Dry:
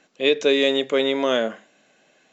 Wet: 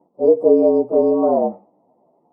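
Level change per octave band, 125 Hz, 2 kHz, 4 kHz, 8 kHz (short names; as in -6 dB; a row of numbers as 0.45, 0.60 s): +5.0 dB, under -35 dB, under -40 dB, n/a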